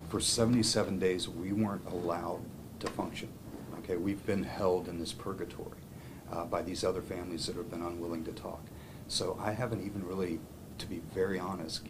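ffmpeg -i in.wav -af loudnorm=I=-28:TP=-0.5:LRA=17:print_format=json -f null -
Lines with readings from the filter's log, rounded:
"input_i" : "-35.3",
"input_tp" : "-14.9",
"input_lra" : "2.1",
"input_thresh" : "-45.7",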